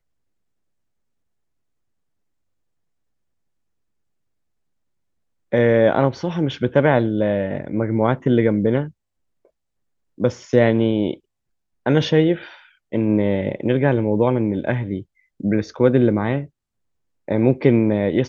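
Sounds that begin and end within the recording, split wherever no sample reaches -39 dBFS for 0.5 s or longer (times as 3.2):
5.52–8.91
10.18–11.15
11.86–16.47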